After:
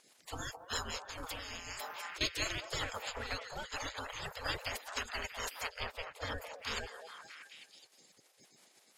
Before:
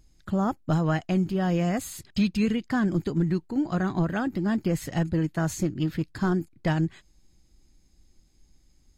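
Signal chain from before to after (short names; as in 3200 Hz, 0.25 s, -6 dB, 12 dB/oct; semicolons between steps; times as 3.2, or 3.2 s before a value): bin magnitudes rounded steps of 30 dB; rotary speaker horn 6 Hz; spectral gate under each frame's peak -30 dB weak; low shelf 200 Hz +4.5 dB; delay with a stepping band-pass 0.212 s, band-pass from 680 Hz, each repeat 0.7 oct, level -3 dB; 1.1–2.21 negative-ratio compressor -53 dBFS, ratio -1; 5.8–6.38 tone controls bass +4 dB, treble -10 dB; gain +9 dB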